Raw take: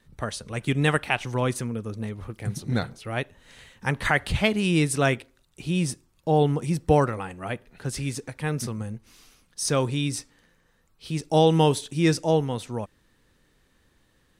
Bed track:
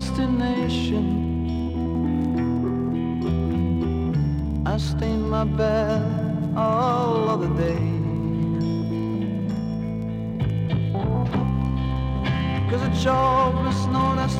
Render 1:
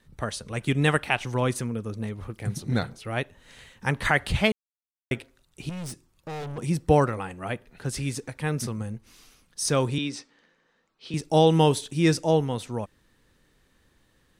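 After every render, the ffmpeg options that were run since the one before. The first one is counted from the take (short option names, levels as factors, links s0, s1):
-filter_complex "[0:a]asettb=1/sr,asplit=3[s0][s1][s2];[s0]atrim=end=5.694[s3];[s1]atrim=start=5.69:end=6.58,asetpts=PTS-STARTPTS,afade=t=in:d=0.004:c=qsin,afade=t=out:st=0.886:d=0.004:c=qsin,aeval=exprs='(tanh(44.7*val(0)+0.2)-tanh(0.2))/44.7':c=same[s4];[s2]atrim=start=6.576[s5];[s3][s4]acrossfade=d=0.004:c1=hsin:c2=qsin[s6];[s6][s5]acrossfade=d=0.004:c1=qsin:c2=hsin,asettb=1/sr,asplit=3[s7][s8][s9];[s7]atrim=end=9.984[s10];[s8]atrim=start=9.98:end=11.14,asetpts=PTS-STARTPTS,afade=t=in:d=0.004:c=qsin,afade=t=out:st=1.156:d=0.004:c=qsin,acrossover=split=190 6200:gain=0.0891 1 0.0631[s11][s12][s13];[s11][s12][s13]amix=inputs=3:normalize=0[s14];[s9]atrim=start=11.136[s15];[s10][s14]acrossfade=d=0.004:c1=hsin:c2=qsin[s16];[s16][s15]acrossfade=d=0.004:c1=qsin:c2=hsin,asplit=3[s17][s18][s19];[s17]atrim=end=4.52,asetpts=PTS-STARTPTS,afade=t=out:st=4.516:d=0.004:c=hsin[s20];[s18]atrim=start=4.52:end=5.11,asetpts=PTS-STARTPTS,volume=0[s21];[s19]atrim=start=5.11,asetpts=PTS-STARTPTS,afade=t=in:d=0.004:c=hsin[s22];[s20][s21][s22]concat=n=3:v=0:a=1"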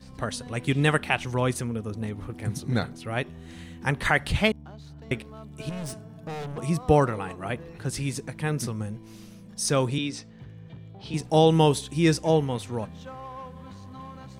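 -filter_complex "[1:a]volume=0.0891[s0];[0:a][s0]amix=inputs=2:normalize=0"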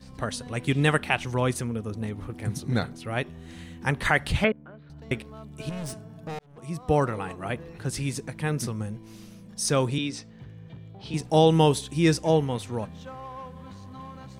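-filter_complex "[0:a]asettb=1/sr,asplit=3[s0][s1][s2];[s0]atrim=end=4.444[s3];[s1]atrim=start=4.44:end=4.9,asetpts=PTS-STARTPTS,afade=t=in:d=0.004:c=qsin,afade=t=out:st=0.456:d=0.004:c=qsin,highpass=170,equalizer=f=530:t=q:w=4:g=8,equalizer=f=800:t=q:w=4:g=-10,equalizer=f=1500:t=q:w=4:g=6,lowpass=f=2500:w=0.5412,lowpass=f=2500:w=1.3066[s4];[s2]atrim=start=4.896[s5];[s3][s4]acrossfade=d=0.004:c1=hsin:c2=qsin[s6];[s6][s5]acrossfade=d=0.004:c1=qsin:c2=hsin,asplit=2[s7][s8];[s7]atrim=end=6.39,asetpts=PTS-STARTPTS,afade=t=out:st=6.386:d=0.004:c=hsin[s9];[s8]atrim=start=6.39,asetpts=PTS-STARTPTS,afade=t=in:d=0.81[s10];[s9][s10]concat=n=2:v=0:a=1"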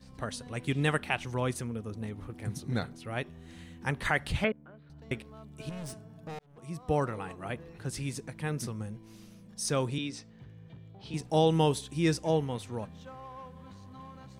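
-af "volume=0.501"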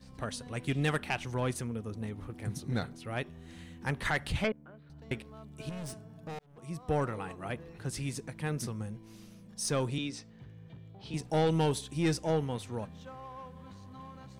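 -af "aeval=exprs='(tanh(11.2*val(0)+0.15)-tanh(0.15))/11.2':c=same"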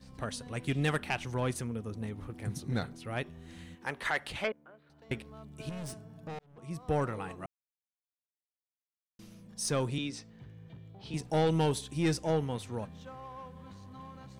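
-filter_complex "[0:a]asettb=1/sr,asplit=3[s0][s1][s2];[s0]atrim=end=3.754[s3];[s1]atrim=start=3.75:end=5.1,asetpts=PTS-STARTPTS,afade=t=in:d=0.004:c=qsin,afade=t=out:st=1.346:d=0.004:c=qsin,bass=f=250:g=-15,treble=f=4000:g=-3[s4];[s2]atrim=start=5.096[s5];[s3][s4]acrossfade=d=0.004:c1=hsin:c2=qsin[s6];[s6][s5]acrossfade=d=0.004:c1=qsin:c2=hsin,asettb=1/sr,asplit=3[s7][s8][s9];[s7]atrim=end=6.274[s10];[s8]atrim=start=6.27:end=6.71,asetpts=PTS-STARTPTS,afade=t=in:d=0.004:c=qsin,afade=t=out:st=0.436:d=0.004:c=qsin,highshelf=f=7800:g=-10.5[s11];[s9]atrim=start=6.706[s12];[s10][s11]acrossfade=d=0.004:c1=hsin:c2=qsin[s13];[s13][s12]acrossfade=d=0.004:c1=qsin:c2=hsin,asplit=3[s14][s15][s16];[s14]atrim=end=7.46,asetpts=PTS-STARTPTS,afade=t=out:st=7.456:d=0.004:c=hsin[s17];[s15]atrim=start=7.46:end=9.19,asetpts=PTS-STARTPTS,volume=0[s18];[s16]atrim=start=9.19,asetpts=PTS-STARTPTS,afade=t=in:d=0.004:c=hsin[s19];[s17][s18][s19]concat=n=3:v=0:a=1"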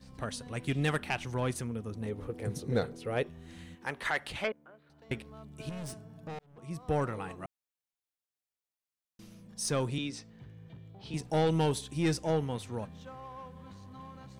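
-filter_complex "[0:a]asettb=1/sr,asplit=3[s0][s1][s2];[s0]atrim=end=2.064[s3];[s1]atrim=start=2.06:end=3.27,asetpts=PTS-STARTPTS,afade=t=in:d=0.004:c=qsin,afade=t=out:st=1.206:d=0.004:c=qsin,equalizer=f=470:t=o:w=0.47:g=14.5[s4];[s2]atrim=start=3.266[s5];[s3][s4]acrossfade=d=0.004:c1=hsin:c2=qsin[s6];[s6][s5]acrossfade=d=0.004:c1=qsin:c2=hsin"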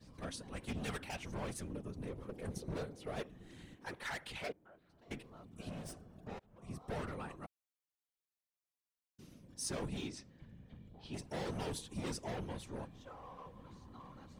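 -filter_complex "[0:a]acrossover=split=5100[s0][s1];[s0]asoftclip=type=hard:threshold=0.0251[s2];[s2][s1]amix=inputs=2:normalize=0,afftfilt=real='hypot(re,im)*cos(2*PI*random(0))':imag='hypot(re,im)*sin(2*PI*random(1))':win_size=512:overlap=0.75"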